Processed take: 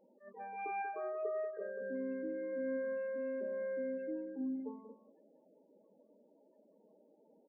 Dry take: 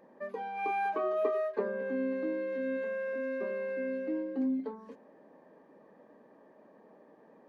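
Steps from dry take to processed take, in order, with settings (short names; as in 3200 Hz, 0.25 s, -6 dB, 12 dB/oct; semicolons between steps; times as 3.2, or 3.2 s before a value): 0.82–1.81 fixed phaser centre 970 Hz, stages 6; 2.52–3.98 comb 3.6 ms, depth 43%; loudest bins only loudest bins 16; outdoor echo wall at 32 m, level -11 dB; attack slew limiter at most 180 dB/s; gain -7.5 dB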